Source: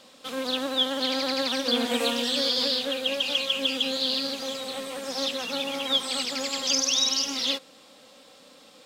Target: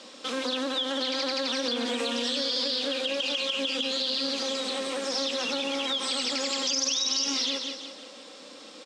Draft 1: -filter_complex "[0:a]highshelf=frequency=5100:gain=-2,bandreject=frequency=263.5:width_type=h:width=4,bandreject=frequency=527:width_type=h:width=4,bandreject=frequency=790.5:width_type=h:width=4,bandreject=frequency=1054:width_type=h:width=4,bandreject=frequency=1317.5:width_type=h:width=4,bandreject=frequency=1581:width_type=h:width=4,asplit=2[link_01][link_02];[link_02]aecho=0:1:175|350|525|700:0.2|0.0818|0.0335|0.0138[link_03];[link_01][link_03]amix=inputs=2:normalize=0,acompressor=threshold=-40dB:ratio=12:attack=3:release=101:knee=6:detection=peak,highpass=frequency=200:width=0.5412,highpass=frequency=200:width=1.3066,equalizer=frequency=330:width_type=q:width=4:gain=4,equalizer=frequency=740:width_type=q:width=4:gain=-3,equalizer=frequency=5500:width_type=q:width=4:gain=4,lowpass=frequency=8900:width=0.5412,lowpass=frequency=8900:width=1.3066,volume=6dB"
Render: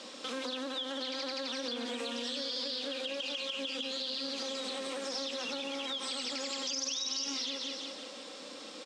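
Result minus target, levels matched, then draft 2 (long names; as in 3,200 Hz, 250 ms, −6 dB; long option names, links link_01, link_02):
downward compressor: peak gain reduction +8 dB
-filter_complex "[0:a]highshelf=frequency=5100:gain=-2,bandreject=frequency=263.5:width_type=h:width=4,bandreject=frequency=527:width_type=h:width=4,bandreject=frequency=790.5:width_type=h:width=4,bandreject=frequency=1054:width_type=h:width=4,bandreject=frequency=1317.5:width_type=h:width=4,bandreject=frequency=1581:width_type=h:width=4,asplit=2[link_01][link_02];[link_02]aecho=0:1:175|350|525|700:0.2|0.0818|0.0335|0.0138[link_03];[link_01][link_03]amix=inputs=2:normalize=0,acompressor=threshold=-31dB:ratio=12:attack=3:release=101:knee=6:detection=peak,highpass=frequency=200:width=0.5412,highpass=frequency=200:width=1.3066,equalizer=frequency=330:width_type=q:width=4:gain=4,equalizer=frequency=740:width_type=q:width=4:gain=-3,equalizer=frequency=5500:width_type=q:width=4:gain=4,lowpass=frequency=8900:width=0.5412,lowpass=frequency=8900:width=1.3066,volume=6dB"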